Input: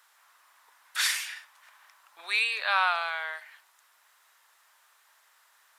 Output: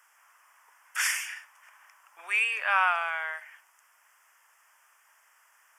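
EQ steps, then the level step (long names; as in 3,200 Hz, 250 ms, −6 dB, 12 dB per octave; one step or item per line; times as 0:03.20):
high-pass filter 570 Hz 6 dB per octave
Butterworth band-reject 4,000 Hz, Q 1.8
high-shelf EQ 11,000 Hz −4.5 dB
+2.0 dB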